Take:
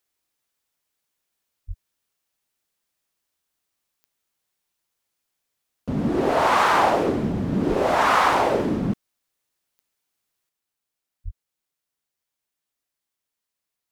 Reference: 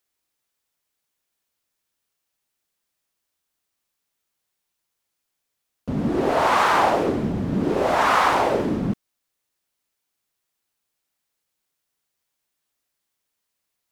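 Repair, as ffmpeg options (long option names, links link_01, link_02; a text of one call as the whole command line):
ffmpeg -i in.wav -filter_complex "[0:a]adeclick=threshold=4,asplit=3[link_01][link_02][link_03];[link_01]afade=type=out:start_time=1.67:duration=0.02[link_04];[link_02]highpass=frequency=140:width=0.5412,highpass=frequency=140:width=1.3066,afade=type=in:start_time=1.67:duration=0.02,afade=type=out:start_time=1.79:duration=0.02[link_05];[link_03]afade=type=in:start_time=1.79:duration=0.02[link_06];[link_04][link_05][link_06]amix=inputs=3:normalize=0,asplit=3[link_07][link_08][link_09];[link_07]afade=type=out:start_time=7.68:duration=0.02[link_10];[link_08]highpass=frequency=140:width=0.5412,highpass=frequency=140:width=1.3066,afade=type=in:start_time=7.68:duration=0.02,afade=type=out:start_time=7.8:duration=0.02[link_11];[link_09]afade=type=in:start_time=7.8:duration=0.02[link_12];[link_10][link_11][link_12]amix=inputs=3:normalize=0,asplit=3[link_13][link_14][link_15];[link_13]afade=type=out:start_time=11.24:duration=0.02[link_16];[link_14]highpass=frequency=140:width=0.5412,highpass=frequency=140:width=1.3066,afade=type=in:start_time=11.24:duration=0.02,afade=type=out:start_time=11.36:duration=0.02[link_17];[link_15]afade=type=in:start_time=11.36:duration=0.02[link_18];[link_16][link_17][link_18]amix=inputs=3:normalize=0,asetnsamples=nb_out_samples=441:pad=0,asendcmd='10.49 volume volume 5.5dB',volume=0dB" out.wav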